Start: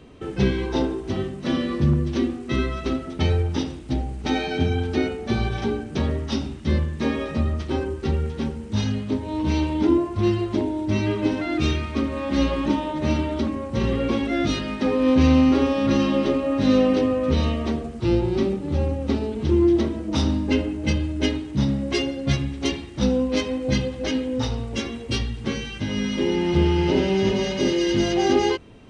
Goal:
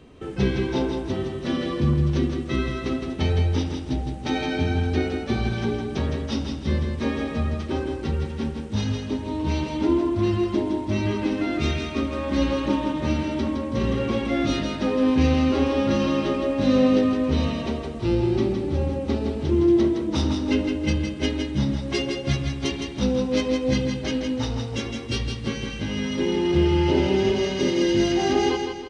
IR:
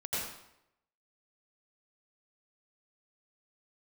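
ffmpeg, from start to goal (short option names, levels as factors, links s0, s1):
-af "aecho=1:1:163|326|489|652|815:0.531|0.223|0.0936|0.0393|0.0165,volume=0.794"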